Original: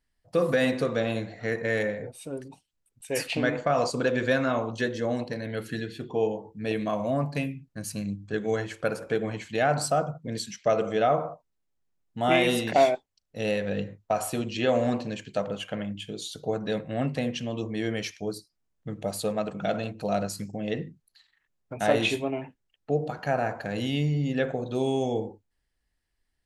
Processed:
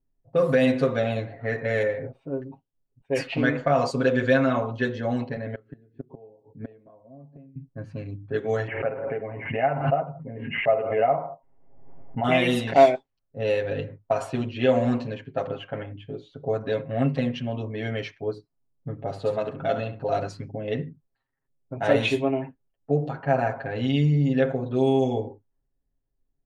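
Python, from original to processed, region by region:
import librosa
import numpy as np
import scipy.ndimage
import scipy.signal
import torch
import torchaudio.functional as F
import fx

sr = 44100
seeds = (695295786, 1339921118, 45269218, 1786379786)

y = fx.chain(x, sr, fx.highpass(hz=100.0, slope=24),
    fx.gate_flip(shuts_db=-24.0, range_db=-24), at=(5.36, 7.56))
y = fx.chain(y, sr, fx.cheby_ripple(hz=2900.0, ripple_db=9),
    fx.pre_swell(db_per_s=49.0), at=(8.67, 12.24))
y = fx.chain(y, sr, fx.notch(hz=2400.0, q=13.0),
    fx.room_flutter(wall_m=11.8, rt60_s=0.39), at=(19.03, 20.17))
y = fx.env_lowpass(y, sr, base_hz=560.0, full_db=-21.5)
y = fx.high_shelf(y, sr, hz=4800.0, db=-10.5)
y = y + 0.97 * np.pad(y, (int(7.4 * sr / 1000.0), 0))[:len(y)]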